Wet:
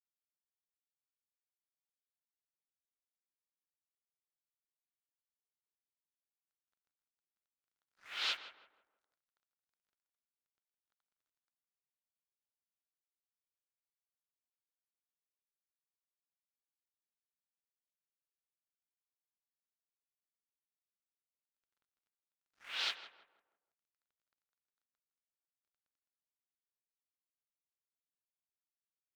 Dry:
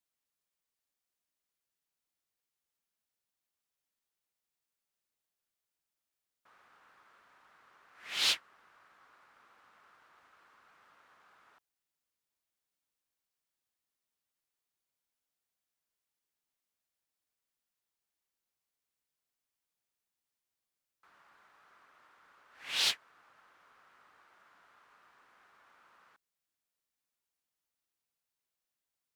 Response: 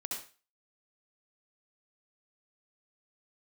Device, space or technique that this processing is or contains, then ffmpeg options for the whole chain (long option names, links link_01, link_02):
pocket radio on a weak battery: -filter_complex "[0:a]asettb=1/sr,asplit=3[link_01][link_02][link_03];[link_01]atrim=end=10.834[link_04];[link_02]atrim=start=10.83:end=11.42,asetpts=PTS-STARTPTS,afade=type=in:duration=0.004:curve=qsin,afade=type=out:start_time=0.586:duration=0.004:curve=qsin,aecho=1:1:6.9:0.5,atrim=end_sample=26019[link_05];[link_03]atrim=start=11.416[link_06];[link_04][link_05]acrossfade=duration=0.004:curve1=hsin:curve2=qsin[link_07];[link_07][link_06]acrossfade=duration=0.004:curve1=qsin:curve2=hsin,highpass=370,lowpass=3900,aeval=exprs='sgn(val(0))*max(abs(val(0))-0.00168,0)':channel_layout=same,equalizer=frequency=1400:width_type=o:width=0.32:gain=6,asplit=2[link_08][link_09];[link_09]adelay=162,lowpass=frequency=1400:poles=1,volume=-10dB,asplit=2[link_10][link_11];[link_11]adelay=162,lowpass=frequency=1400:poles=1,volume=0.43,asplit=2[link_12][link_13];[link_13]adelay=162,lowpass=frequency=1400:poles=1,volume=0.43,asplit=2[link_14][link_15];[link_15]adelay=162,lowpass=frequency=1400:poles=1,volume=0.43,asplit=2[link_16][link_17];[link_17]adelay=162,lowpass=frequency=1400:poles=1,volume=0.43[link_18];[link_08][link_10][link_12][link_14][link_16][link_18]amix=inputs=6:normalize=0,volume=-4.5dB"